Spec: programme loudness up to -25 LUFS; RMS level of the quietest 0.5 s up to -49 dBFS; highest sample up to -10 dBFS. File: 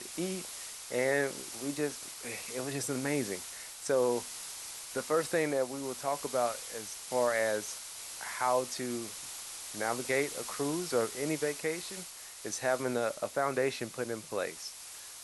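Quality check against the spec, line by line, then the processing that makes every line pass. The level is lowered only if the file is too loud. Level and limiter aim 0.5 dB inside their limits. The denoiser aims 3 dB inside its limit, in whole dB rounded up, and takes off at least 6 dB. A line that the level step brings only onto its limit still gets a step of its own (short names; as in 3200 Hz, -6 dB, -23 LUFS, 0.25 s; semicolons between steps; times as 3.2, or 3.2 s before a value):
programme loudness -34.0 LUFS: OK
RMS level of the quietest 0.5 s -47 dBFS: fail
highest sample -17.0 dBFS: OK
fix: denoiser 6 dB, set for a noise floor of -47 dBFS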